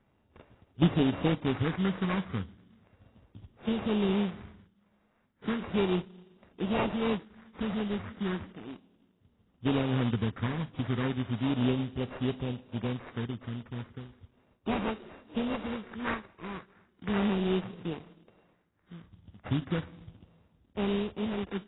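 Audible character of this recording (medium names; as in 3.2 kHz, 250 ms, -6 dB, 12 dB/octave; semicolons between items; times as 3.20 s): a buzz of ramps at a fixed pitch in blocks of 16 samples; phasing stages 6, 0.35 Hz, lowest notch 590–1800 Hz; aliases and images of a low sample rate 3.3 kHz, jitter 20%; AAC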